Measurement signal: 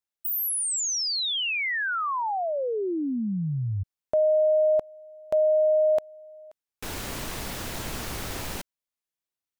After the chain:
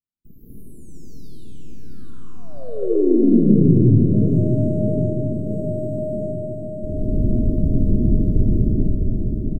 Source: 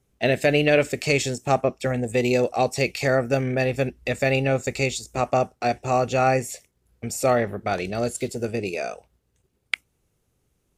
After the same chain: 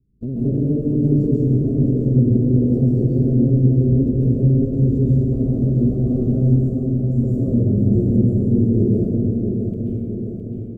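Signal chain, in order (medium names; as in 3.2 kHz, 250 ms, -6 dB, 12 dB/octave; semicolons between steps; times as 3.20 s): block-companded coder 3-bit; gate -38 dBFS, range -8 dB; inverse Chebyshev low-pass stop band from 780 Hz, stop band 50 dB; in parallel at -1.5 dB: compression, threshold -36 dBFS; on the sum: peak limiter -27 dBFS; on a send: feedback delay 661 ms, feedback 58%, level -6 dB; on the sum: plate-style reverb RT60 2.7 s, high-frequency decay 0.45×, pre-delay 120 ms, DRR -8.5 dB; modulated delay 381 ms, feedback 78%, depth 56 cents, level -22.5 dB; trim +8 dB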